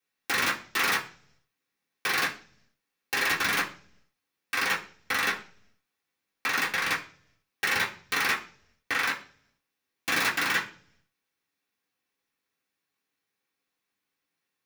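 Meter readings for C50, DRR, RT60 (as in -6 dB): 12.5 dB, -2.5 dB, 0.50 s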